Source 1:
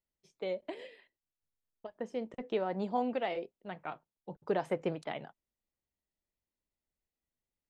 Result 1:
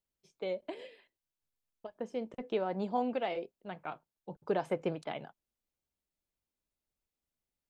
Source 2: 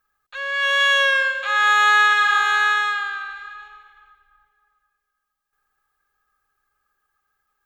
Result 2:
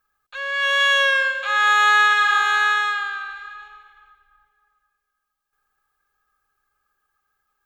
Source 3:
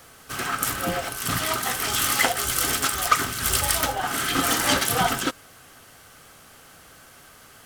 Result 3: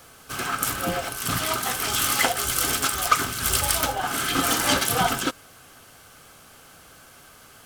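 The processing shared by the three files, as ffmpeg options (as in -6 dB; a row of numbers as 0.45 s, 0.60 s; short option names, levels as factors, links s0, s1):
-af "bandreject=f=1900:w=12"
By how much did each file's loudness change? 0.0 LU, -0.5 LU, 0.0 LU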